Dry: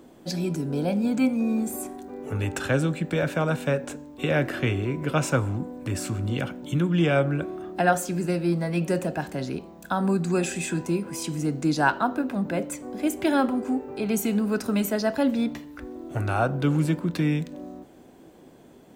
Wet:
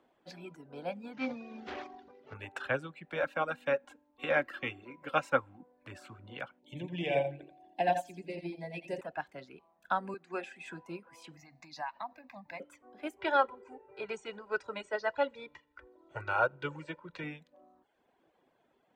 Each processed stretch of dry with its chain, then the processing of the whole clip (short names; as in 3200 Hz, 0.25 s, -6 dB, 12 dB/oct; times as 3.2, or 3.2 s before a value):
1.13–2.34 CVSD 32 kbps + bell 120 Hz +4 dB 1.9 oct + sustainer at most 22 dB/s
3.2–5.63 high shelf 9700 Hz +5 dB + comb 3.7 ms, depth 46%
6.59–9.01 Butterworth band-stop 1300 Hz, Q 1.1 + feedback echo 85 ms, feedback 31%, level -3.5 dB
10.14–10.66 HPF 200 Hz 24 dB/oct + high shelf 5200 Hz -8 dB
11.37–12.6 high shelf 2100 Hz +10 dB + compressor 20:1, threshold -22 dBFS + fixed phaser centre 2100 Hz, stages 8
13.19–17.24 brick-wall FIR low-pass 8800 Hz + comb 2.1 ms, depth 66% + feedback echo 82 ms, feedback 55%, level -21 dB
whole clip: reverb removal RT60 0.87 s; three-band isolator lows -14 dB, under 560 Hz, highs -18 dB, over 3600 Hz; upward expander 1.5:1, over -44 dBFS